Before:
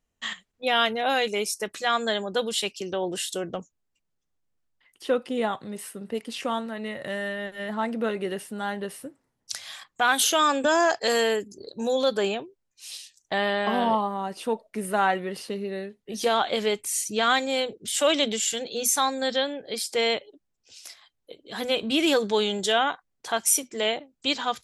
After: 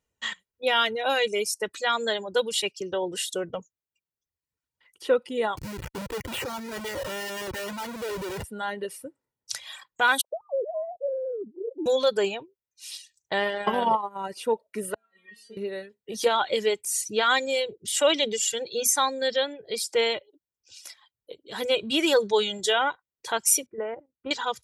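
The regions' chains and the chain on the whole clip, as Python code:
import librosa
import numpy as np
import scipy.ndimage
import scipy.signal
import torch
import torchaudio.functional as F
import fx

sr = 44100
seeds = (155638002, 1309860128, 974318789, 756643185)

y = fx.chain(x, sr, fx.steep_lowpass(hz=3100.0, slope=36),
    fx.schmitt(flips_db=-44.0), at=(5.57, 8.44))
y = fx.chain(y, sr, fx.sine_speech(),
    fx.steep_lowpass(hz=590.0, slope=36),
    fx.over_compress(threshold_db=-29.0, ratio=-1.0), at=(10.21, 11.86))
y = fx.chain(y, sr, fx.transient(attack_db=9, sustain_db=-9),
    fx.peak_eq(hz=4100.0, db=-6.0, octaves=0.39), at=(13.4, 14.29))
y = fx.chain(y, sr, fx.over_compress(threshold_db=-30.0, ratio=-0.5),
    fx.stiff_resonator(f0_hz=220.0, decay_s=0.62, stiffness=0.002), at=(14.94, 15.57))
y = fx.chain(y, sr, fx.lowpass(hz=1600.0, slope=24),
    fx.low_shelf(hz=150.0, db=7.0),
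    fx.level_steps(step_db=10), at=(23.66, 24.31))
y = scipy.signal.sosfilt(scipy.signal.butter(2, 63.0, 'highpass', fs=sr, output='sos'), y)
y = y + 0.39 * np.pad(y, (int(2.1 * sr / 1000.0), 0))[:len(y)]
y = fx.dereverb_blind(y, sr, rt60_s=0.97)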